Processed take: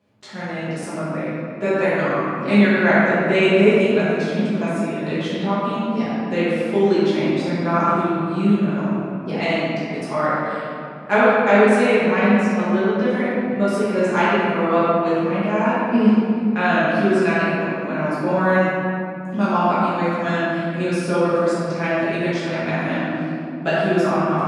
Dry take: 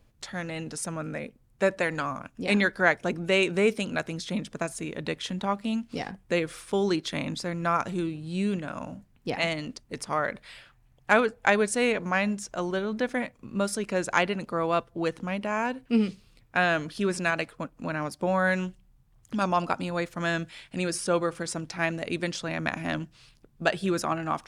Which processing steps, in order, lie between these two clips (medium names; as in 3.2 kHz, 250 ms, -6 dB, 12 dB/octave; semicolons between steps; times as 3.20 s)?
high-pass 130 Hz 24 dB/octave; treble shelf 4.6 kHz -12 dB; reverberation RT60 2.7 s, pre-delay 5 ms, DRR -11.5 dB; trim -3 dB